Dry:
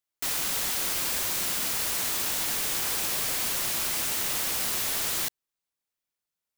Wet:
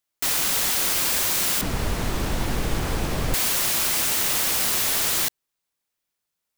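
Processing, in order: 1.61–3.34 s: tilt EQ -4.5 dB/octave; trim +6 dB

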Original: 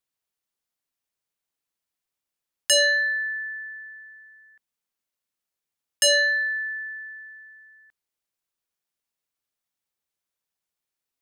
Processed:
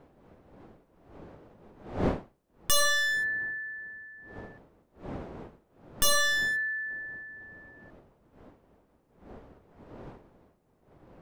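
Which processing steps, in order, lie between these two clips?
one-sided wavefolder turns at -25 dBFS; wind noise 500 Hz -42 dBFS; trim -1.5 dB

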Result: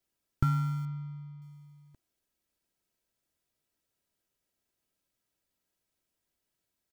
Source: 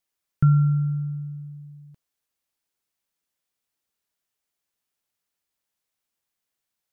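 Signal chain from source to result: comb 3.1 ms, depth 87%; in parallel at -8.5 dB: sample-rate reducer 1.1 kHz, jitter 0%; 0.85–1.42 s: on the sum: distance through air 230 m; trim -4 dB

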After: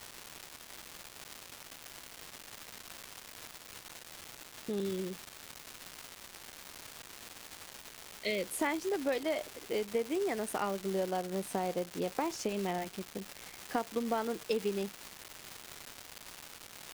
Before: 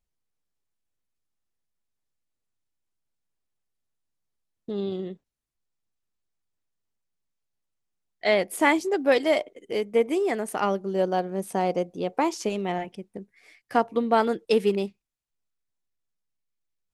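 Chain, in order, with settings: 4.80–8.56 s: elliptic band-stop 540–2200 Hz; compression 4:1, threshold -27 dBFS, peak gain reduction 10.5 dB; crackle 550 per s -30 dBFS; trim -3.5 dB

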